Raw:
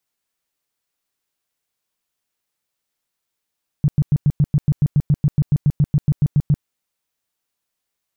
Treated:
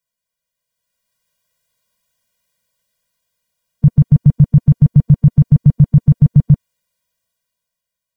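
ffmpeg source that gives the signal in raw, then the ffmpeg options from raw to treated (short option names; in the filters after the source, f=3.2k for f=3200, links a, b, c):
-f lavfi -i "aevalsrc='0.299*sin(2*PI*146*mod(t,0.14))*lt(mod(t,0.14),6/146)':d=2.8:s=44100"
-af "dynaudnorm=f=210:g=9:m=12dB,afftfilt=real='re*eq(mod(floor(b*sr/1024/230),2),0)':imag='im*eq(mod(floor(b*sr/1024/230),2),0)':win_size=1024:overlap=0.75"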